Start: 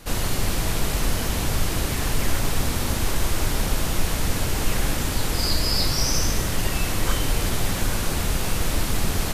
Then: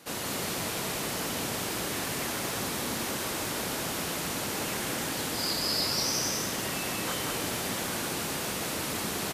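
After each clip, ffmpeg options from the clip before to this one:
ffmpeg -i in.wav -af "highpass=200,aecho=1:1:187:0.668,volume=-5.5dB" out.wav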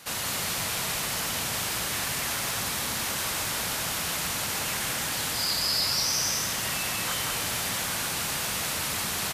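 ffmpeg -i in.wav -filter_complex "[0:a]asplit=2[link_01][link_02];[link_02]alimiter=level_in=3.5dB:limit=-24dB:level=0:latency=1,volume=-3.5dB,volume=1.5dB[link_03];[link_01][link_03]amix=inputs=2:normalize=0,equalizer=frequency=330:width=0.72:gain=-12" out.wav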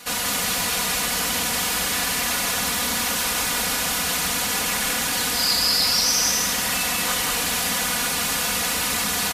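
ffmpeg -i in.wav -af "aecho=1:1:4.1:0.76,volume=4.5dB" out.wav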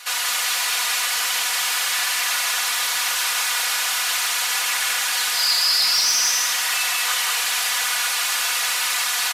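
ffmpeg -i in.wav -filter_complex "[0:a]highpass=930,asplit=2[link_01][link_02];[link_02]highpass=frequency=720:poles=1,volume=8dB,asoftclip=type=tanh:threshold=-8dB[link_03];[link_01][link_03]amix=inputs=2:normalize=0,lowpass=frequency=7000:poles=1,volume=-6dB" out.wav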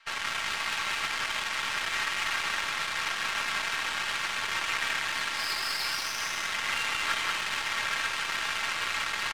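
ffmpeg -i in.wav -af "afreqshift=140,highpass=130,lowpass=2600,aeval=exprs='0.2*(cos(1*acos(clip(val(0)/0.2,-1,1)))-cos(1*PI/2))+0.00501*(cos(4*acos(clip(val(0)/0.2,-1,1)))-cos(4*PI/2))+0.00447*(cos(5*acos(clip(val(0)/0.2,-1,1)))-cos(5*PI/2))+0.0251*(cos(7*acos(clip(val(0)/0.2,-1,1)))-cos(7*PI/2))+0.00224*(cos(8*acos(clip(val(0)/0.2,-1,1)))-cos(8*PI/2))':channel_layout=same,volume=-2dB" out.wav

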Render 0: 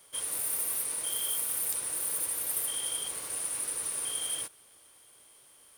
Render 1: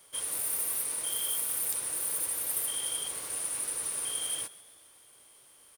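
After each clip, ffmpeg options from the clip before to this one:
ffmpeg -i in.wav -filter_complex "[0:a]asplit=6[link_01][link_02][link_03][link_04][link_05][link_06];[link_02]adelay=132,afreqshift=73,volume=-19.5dB[link_07];[link_03]adelay=264,afreqshift=146,volume=-24.5dB[link_08];[link_04]adelay=396,afreqshift=219,volume=-29.6dB[link_09];[link_05]adelay=528,afreqshift=292,volume=-34.6dB[link_10];[link_06]adelay=660,afreqshift=365,volume=-39.6dB[link_11];[link_01][link_07][link_08][link_09][link_10][link_11]amix=inputs=6:normalize=0" out.wav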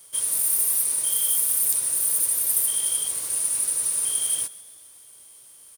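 ffmpeg -i in.wav -af "bass=frequency=250:gain=4,treble=frequency=4000:gain=10" out.wav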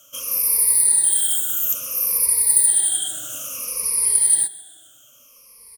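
ffmpeg -i in.wav -af "afftfilt=real='re*pow(10,24/40*sin(2*PI*(0.87*log(max(b,1)*sr/1024/100)/log(2)-(-0.59)*(pts-256)/sr)))':imag='im*pow(10,24/40*sin(2*PI*(0.87*log(max(b,1)*sr/1024/100)/log(2)-(-0.59)*(pts-256)/sr)))':win_size=1024:overlap=0.75,volume=-2dB" out.wav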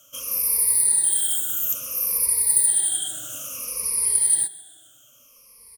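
ffmpeg -i in.wav -af "lowshelf=frequency=210:gain=4.5,volume=-3dB" out.wav

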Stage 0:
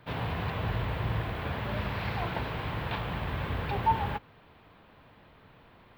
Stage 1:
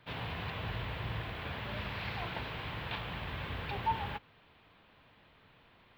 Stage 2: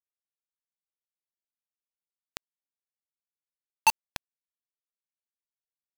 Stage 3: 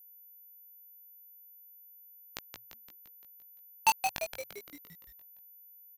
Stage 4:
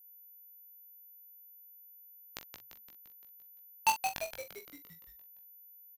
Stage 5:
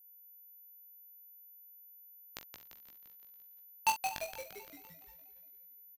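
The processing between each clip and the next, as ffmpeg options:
ffmpeg -i in.wav -af "equalizer=frequency=3200:width_type=o:width=1.9:gain=7.5,volume=-8dB" out.wav
ffmpeg -i in.wav -af "acompressor=threshold=-43dB:ratio=4,highpass=frequency=830:width_type=q:width=9,acrusher=bits=3:mix=0:aa=0.000001,volume=4.5dB" out.wav
ffmpeg -i in.wav -filter_complex "[0:a]flanger=delay=16.5:depth=3:speed=0.36,asplit=8[link_01][link_02][link_03][link_04][link_05][link_06][link_07][link_08];[link_02]adelay=172,afreqshift=-120,volume=-6.5dB[link_09];[link_03]adelay=344,afreqshift=-240,volume=-11.5dB[link_10];[link_04]adelay=516,afreqshift=-360,volume=-16.6dB[link_11];[link_05]adelay=688,afreqshift=-480,volume=-21.6dB[link_12];[link_06]adelay=860,afreqshift=-600,volume=-26.6dB[link_13];[link_07]adelay=1032,afreqshift=-720,volume=-31.7dB[link_14];[link_08]adelay=1204,afreqshift=-840,volume=-36.7dB[link_15];[link_01][link_09][link_10][link_11][link_12][link_13][link_14][link_15]amix=inputs=8:normalize=0,aeval=exprs='val(0)+0.00224*sin(2*PI*14000*n/s)':channel_layout=same" out.wav
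ffmpeg -i in.wav -filter_complex "[0:a]asplit=2[link_01][link_02];[link_02]adelay=43,volume=-10.5dB[link_03];[link_01][link_03]amix=inputs=2:normalize=0,volume=-2.5dB" out.wav
ffmpeg -i in.wav -af "aecho=1:1:243|486|729|972|1215:0.119|0.0654|0.036|0.0198|0.0109,volume=-2dB" out.wav

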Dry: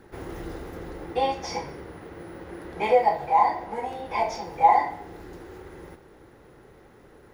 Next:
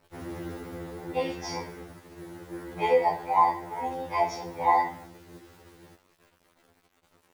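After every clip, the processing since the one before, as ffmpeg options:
ffmpeg -i in.wav -af "agate=range=-9dB:threshold=-40dB:ratio=16:detection=peak,acrusher=bits=8:mix=0:aa=0.000001,afftfilt=real='re*2*eq(mod(b,4),0)':imag='im*2*eq(mod(b,4),0)':win_size=2048:overlap=0.75" out.wav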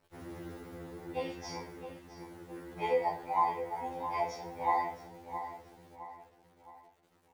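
ffmpeg -i in.wav -filter_complex "[0:a]asplit=2[link_01][link_02];[link_02]adelay=665,lowpass=frequency=3100:poles=1,volume=-10dB,asplit=2[link_03][link_04];[link_04]adelay=665,lowpass=frequency=3100:poles=1,volume=0.44,asplit=2[link_05][link_06];[link_06]adelay=665,lowpass=frequency=3100:poles=1,volume=0.44,asplit=2[link_07][link_08];[link_08]adelay=665,lowpass=frequency=3100:poles=1,volume=0.44,asplit=2[link_09][link_10];[link_10]adelay=665,lowpass=frequency=3100:poles=1,volume=0.44[link_11];[link_01][link_03][link_05][link_07][link_09][link_11]amix=inputs=6:normalize=0,volume=-7.5dB" out.wav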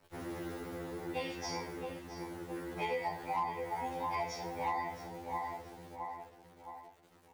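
ffmpeg -i in.wav -filter_complex "[0:a]acrossover=split=270|1200[link_01][link_02][link_03];[link_01]acompressor=threshold=-53dB:ratio=4[link_04];[link_02]acompressor=threshold=-45dB:ratio=4[link_05];[link_03]acompressor=threshold=-45dB:ratio=4[link_06];[link_04][link_05][link_06]amix=inputs=3:normalize=0,asoftclip=type=hard:threshold=-33dB,volume=5.5dB" out.wav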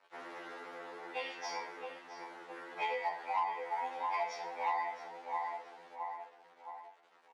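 ffmpeg -i in.wav -filter_complex "[0:a]adynamicsmooth=sensitivity=2:basefreq=3800,highpass=780,asplit=2[link_01][link_02];[link_02]adelay=16,volume=-12dB[link_03];[link_01][link_03]amix=inputs=2:normalize=0,volume=4dB" out.wav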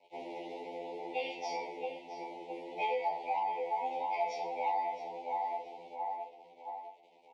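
ffmpeg -i in.wav -filter_complex "[0:a]lowpass=frequency=2100:poles=1,asplit=2[link_01][link_02];[link_02]alimiter=level_in=11.5dB:limit=-24dB:level=0:latency=1,volume=-11.5dB,volume=-1.5dB[link_03];[link_01][link_03]amix=inputs=2:normalize=0,asuperstop=centerf=1400:order=12:qfactor=1.1,volume=2dB" out.wav

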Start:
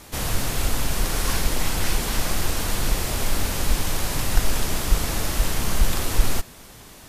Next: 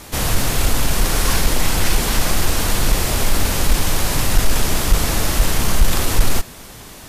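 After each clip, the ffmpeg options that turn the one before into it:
ffmpeg -i in.wav -af "acontrast=76" out.wav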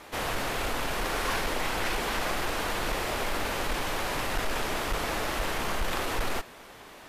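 ffmpeg -i in.wav -af "bass=frequency=250:gain=-14,treble=frequency=4000:gain=-13,volume=-5dB" out.wav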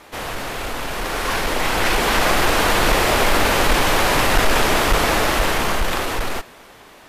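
ffmpeg -i in.wav -af "dynaudnorm=framelen=310:gausssize=11:maxgain=11.5dB,volume=3dB" out.wav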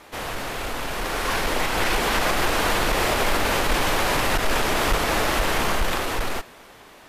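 ffmpeg -i in.wav -af "alimiter=limit=-9dB:level=0:latency=1:release=167,volume=-2.5dB" out.wav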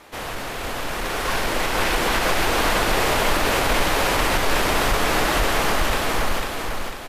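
ffmpeg -i in.wav -af "aecho=1:1:498|996|1494|1992|2490|2988:0.631|0.284|0.128|0.0575|0.0259|0.0116" out.wav

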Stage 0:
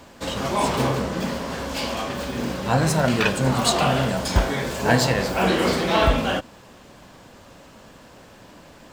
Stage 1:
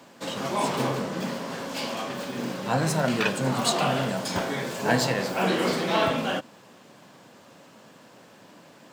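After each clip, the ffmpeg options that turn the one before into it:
ffmpeg -i in.wav -af "highpass=frequency=130:width=0.5412,highpass=frequency=130:width=1.3066,volume=-4dB" out.wav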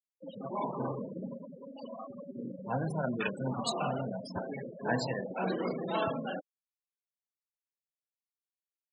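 ffmpeg -i in.wav -af "afftfilt=real='re*gte(hypot(re,im),0.0891)':imag='im*gte(hypot(re,im),0.0891)':win_size=1024:overlap=0.75,volume=-8dB" out.wav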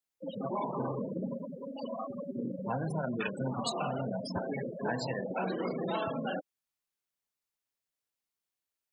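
ffmpeg -i in.wav -af "acompressor=threshold=-36dB:ratio=6,volume=5.5dB" out.wav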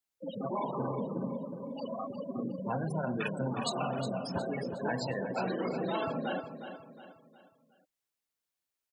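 ffmpeg -i in.wav -af "aecho=1:1:362|724|1086|1448:0.316|0.13|0.0532|0.0218" out.wav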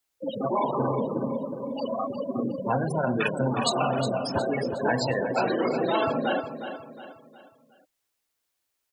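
ffmpeg -i in.wav -af "equalizer=frequency=180:width_type=o:width=0.31:gain=-11.5,volume=9dB" out.wav

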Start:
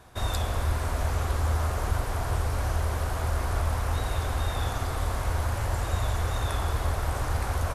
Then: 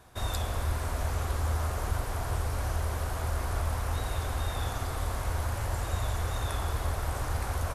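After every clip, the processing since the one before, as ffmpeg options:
ffmpeg -i in.wav -af "highshelf=frequency=7700:gain=4,volume=-3.5dB" out.wav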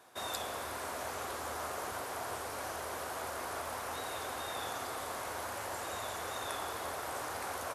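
ffmpeg -i in.wav -af "highpass=320,volume=-1.5dB" out.wav

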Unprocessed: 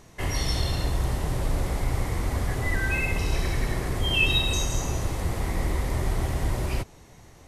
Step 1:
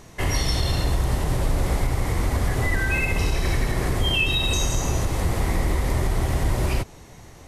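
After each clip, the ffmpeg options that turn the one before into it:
ffmpeg -i in.wav -af "alimiter=limit=-18dB:level=0:latency=1:release=108,volume=5.5dB" out.wav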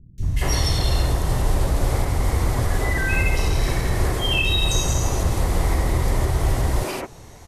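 ffmpeg -i in.wav -filter_complex "[0:a]acrossover=split=220|2300[link_01][link_02][link_03];[link_03]adelay=180[link_04];[link_02]adelay=230[link_05];[link_01][link_05][link_04]amix=inputs=3:normalize=0,volume=2.5dB" out.wav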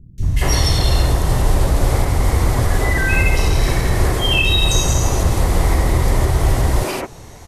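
ffmpeg -i in.wav -af "volume=5dB" -ar 48000 -c:a libmp3lame -b:a 256k out.mp3

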